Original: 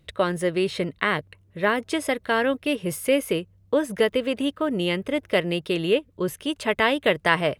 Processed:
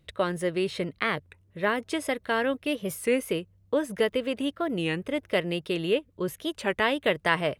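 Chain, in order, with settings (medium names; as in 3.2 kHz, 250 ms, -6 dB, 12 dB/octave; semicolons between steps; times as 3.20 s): warped record 33 1/3 rpm, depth 160 cents; trim -4 dB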